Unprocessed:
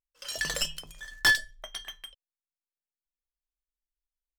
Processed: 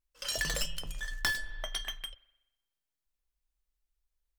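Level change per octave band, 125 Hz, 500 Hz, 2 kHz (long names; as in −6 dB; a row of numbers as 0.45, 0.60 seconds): +3.0, −1.0, −7.5 decibels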